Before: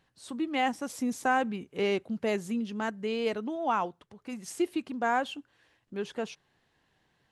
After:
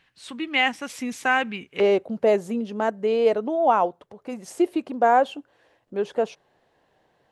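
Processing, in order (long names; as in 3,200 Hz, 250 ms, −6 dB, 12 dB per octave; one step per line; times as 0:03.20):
parametric band 2,400 Hz +14 dB 1.6 octaves, from 0:01.80 580 Hz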